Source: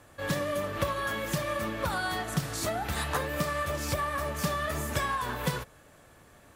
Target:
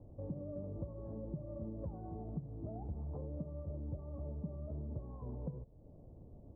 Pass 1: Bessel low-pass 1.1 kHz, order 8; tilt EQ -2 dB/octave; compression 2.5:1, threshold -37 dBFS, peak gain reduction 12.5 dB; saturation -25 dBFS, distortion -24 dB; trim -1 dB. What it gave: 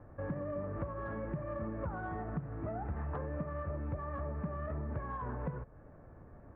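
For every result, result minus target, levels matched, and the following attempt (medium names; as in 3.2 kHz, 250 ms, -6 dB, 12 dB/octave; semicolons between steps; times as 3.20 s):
1 kHz band +10.5 dB; compression: peak gain reduction -4 dB
Bessel low-pass 440 Hz, order 8; tilt EQ -2 dB/octave; compression 2.5:1, threshold -37 dBFS, peak gain reduction 12.5 dB; saturation -25 dBFS, distortion -24 dB; trim -1 dB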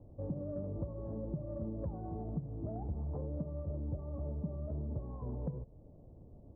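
compression: peak gain reduction -4 dB
Bessel low-pass 440 Hz, order 8; tilt EQ -2 dB/octave; compression 2.5:1, threshold -44 dBFS, peak gain reduction 16.5 dB; saturation -25 dBFS, distortion -31 dB; trim -1 dB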